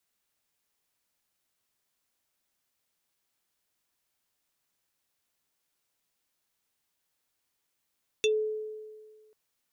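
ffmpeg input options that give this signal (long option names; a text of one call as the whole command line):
ffmpeg -f lavfi -i "aevalsrc='0.0944*pow(10,-3*t/1.7)*sin(2*PI*431*t+1.8*pow(10,-3*t/0.11)*sin(2*PI*7.19*431*t))':duration=1.09:sample_rate=44100" out.wav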